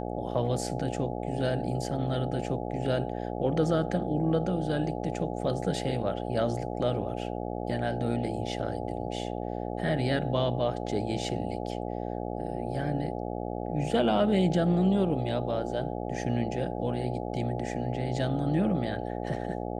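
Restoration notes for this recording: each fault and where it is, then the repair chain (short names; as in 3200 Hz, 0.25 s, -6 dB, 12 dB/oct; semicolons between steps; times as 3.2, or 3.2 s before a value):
buzz 60 Hz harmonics 14 -34 dBFS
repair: de-hum 60 Hz, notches 14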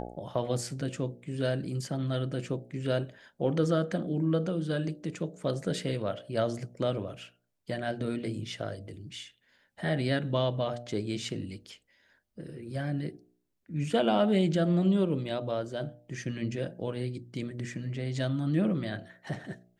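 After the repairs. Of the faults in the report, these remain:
none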